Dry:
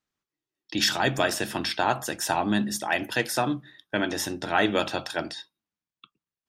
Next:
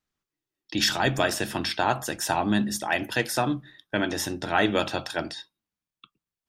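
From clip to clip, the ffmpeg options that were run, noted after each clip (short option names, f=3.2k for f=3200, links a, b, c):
-af "lowshelf=f=72:g=10.5"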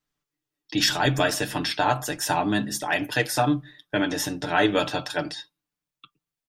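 -af "aecho=1:1:6.8:0.71"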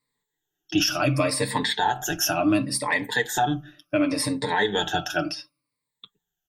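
-af "afftfilt=real='re*pow(10,19/40*sin(2*PI*(0.97*log(max(b,1)*sr/1024/100)/log(2)-(-0.69)*(pts-256)/sr)))':imag='im*pow(10,19/40*sin(2*PI*(0.97*log(max(b,1)*sr/1024/100)/log(2)-(-0.69)*(pts-256)/sr)))':win_size=1024:overlap=0.75,alimiter=limit=-11.5dB:level=0:latency=1:release=260"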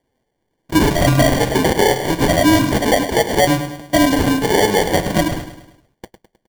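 -filter_complex "[0:a]asplit=2[a][b];[b]asoftclip=type=hard:threshold=-24dB,volume=-4dB[c];[a][c]amix=inputs=2:normalize=0,acrusher=samples=34:mix=1:aa=0.000001,aecho=1:1:104|208|312|416|520:0.282|0.135|0.0649|0.0312|0.015,volume=6dB"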